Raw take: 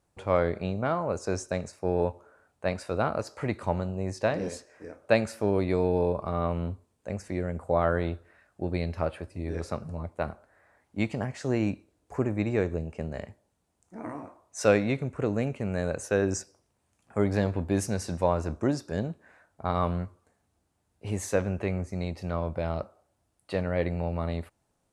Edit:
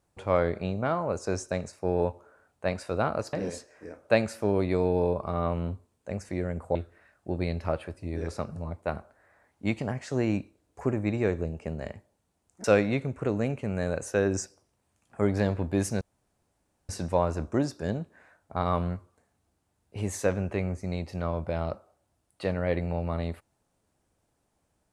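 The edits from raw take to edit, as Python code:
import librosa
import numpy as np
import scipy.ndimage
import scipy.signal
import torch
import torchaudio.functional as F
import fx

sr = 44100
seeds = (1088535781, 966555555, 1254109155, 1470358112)

y = fx.edit(x, sr, fx.cut(start_s=3.33, length_s=0.99),
    fx.cut(start_s=7.74, length_s=0.34),
    fx.cut(start_s=13.97, length_s=0.64),
    fx.insert_room_tone(at_s=17.98, length_s=0.88), tone=tone)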